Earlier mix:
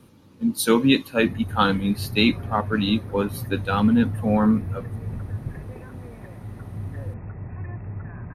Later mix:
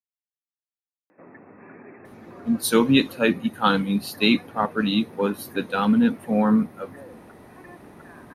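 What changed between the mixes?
speech: entry +2.05 s
background: add high-pass filter 250 Hz 24 dB per octave

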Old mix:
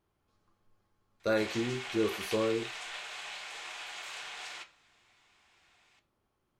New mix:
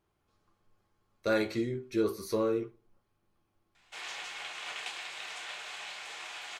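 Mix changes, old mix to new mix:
speech: send +9.0 dB
background: entry +2.55 s

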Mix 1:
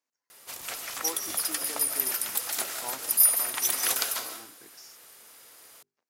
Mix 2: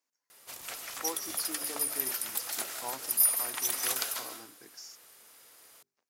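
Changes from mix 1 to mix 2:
speech: add high-shelf EQ 4,600 Hz +5.5 dB
background −4.5 dB

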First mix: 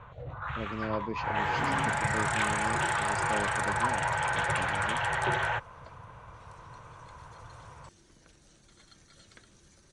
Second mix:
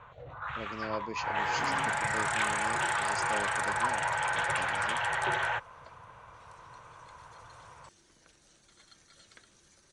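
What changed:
speech: remove high-frequency loss of the air 170 metres
master: add low-shelf EQ 330 Hz −9.5 dB

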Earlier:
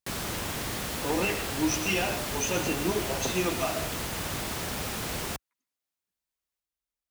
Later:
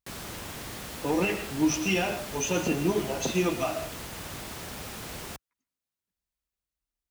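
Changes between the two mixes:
speech: add low-shelf EQ 220 Hz +10.5 dB
background −6.0 dB

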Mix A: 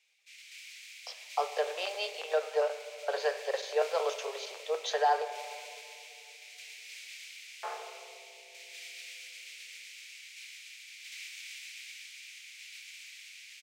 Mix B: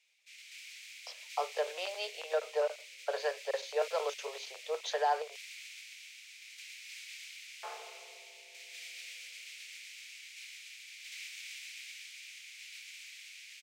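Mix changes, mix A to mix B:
second sound −5.5 dB
reverb: off

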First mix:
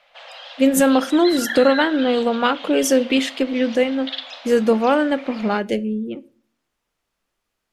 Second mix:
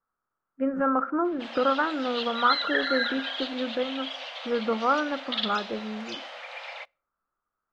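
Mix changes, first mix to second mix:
speech: add transistor ladder low-pass 1,400 Hz, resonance 75%
background: entry +1.25 s

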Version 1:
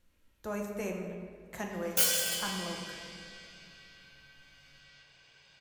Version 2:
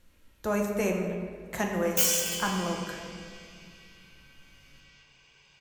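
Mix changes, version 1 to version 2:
speech +8.5 dB
background: add EQ curve with evenly spaced ripples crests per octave 0.74, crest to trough 7 dB

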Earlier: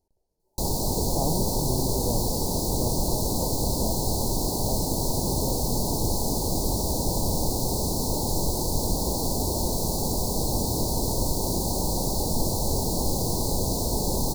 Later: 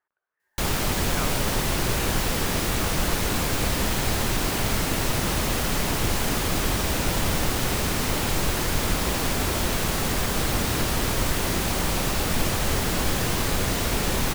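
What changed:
speech: add resonant band-pass 1,300 Hz, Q 2
master: remove Chebyshev band-stop filter 930–4,200 Hz, order 4

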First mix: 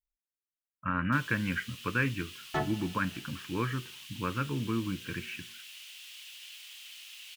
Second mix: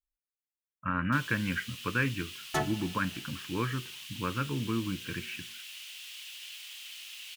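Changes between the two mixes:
first sound +3.0 dB
second sound: remove high-frequency loss of the air 240 metres

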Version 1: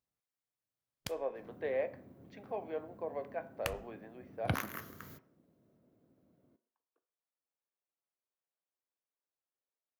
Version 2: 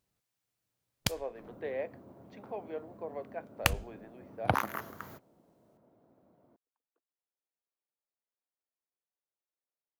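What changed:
first sound +12.0 dB
second sound: add parametric band 860 Hz +14.5 dB 1.7 octaves
reverb: off

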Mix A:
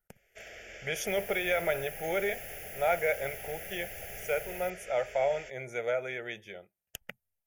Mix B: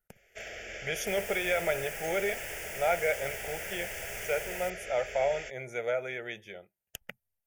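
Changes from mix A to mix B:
first sound +5.5 dB
second sound: remove linear-phase brick-wall band-stop 840–9,700 Hz

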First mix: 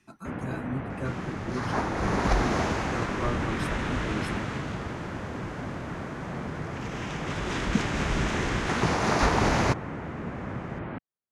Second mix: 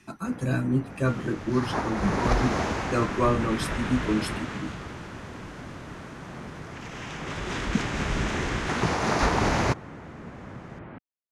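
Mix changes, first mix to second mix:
speech +9.5 dB
first sound −6.5 dB

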